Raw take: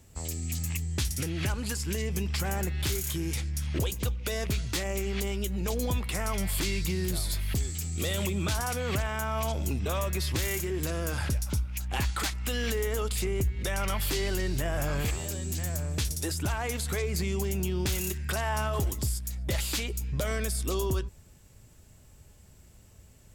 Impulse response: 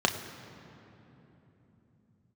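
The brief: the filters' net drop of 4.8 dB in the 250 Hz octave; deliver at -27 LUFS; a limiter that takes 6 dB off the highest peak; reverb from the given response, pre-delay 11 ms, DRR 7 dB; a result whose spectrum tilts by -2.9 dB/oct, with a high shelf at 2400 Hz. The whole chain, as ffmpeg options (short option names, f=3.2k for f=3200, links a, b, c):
-filter_complex "[0:a]equalizer=f=250:t=o:g=-8,highshelf=f=2.4k:g=8,alimiter=limit=-18dB:level=0:latency=1,asplit=2[a][b];[1:a]atrim=start_sample=2205,adelay=11[c];[b][c]afir=irnorm=-1:irlink=0,volume=-19.5dB[d];[a][d]amix=inputs=2:normalize=0,volume=2dB"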